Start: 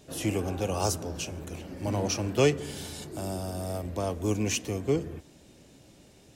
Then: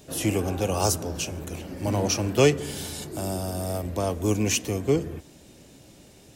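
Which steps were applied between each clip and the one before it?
high-shelf EQ 11,000 Hz +7.5 dB
level +4 dB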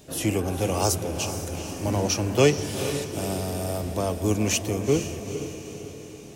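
feedback delay with all-pass diffusion 451 ms, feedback 53%, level −9 dB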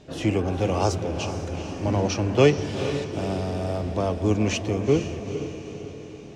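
high-frequency loss of the air 150 metres
level +2 dB

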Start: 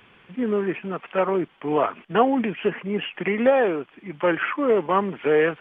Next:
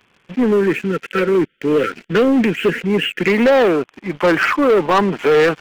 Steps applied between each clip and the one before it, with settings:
time-frequency box erased 0:00.48–0:03.29, 550–1,300 Hz
leveller curve on the samples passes 3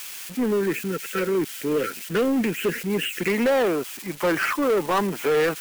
spike at every zero crossing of −17.5 dBFS
level −8 dB

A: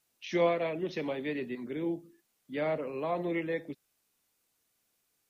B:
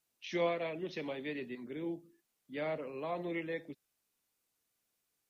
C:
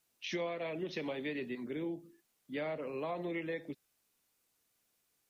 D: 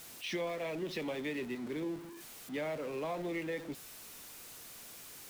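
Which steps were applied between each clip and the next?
dynamic equaliser 3,500 Hz, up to +4 dB, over −49 dBFS, Q 0.74; level −6 dB
downward compressor 6 to 1, threshold −39 dBFS, peak gain reduction 11.5 dB; level +4.5 dB
converter with a step at zero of −43.5 dBFS; level −1 dB

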